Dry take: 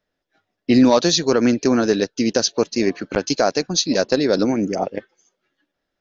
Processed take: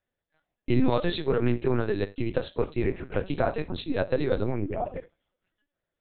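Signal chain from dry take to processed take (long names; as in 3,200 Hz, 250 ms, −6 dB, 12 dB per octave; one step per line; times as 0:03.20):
0:02.57–0:03.79: sub-octave generator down 1 octave, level −2 dB
on a send at −8.5 dB: convolution reverb, pre-delay 3 ms
on the sum: linear-prediction vocoder at 8 kHz pitch kept
level −8.5 dB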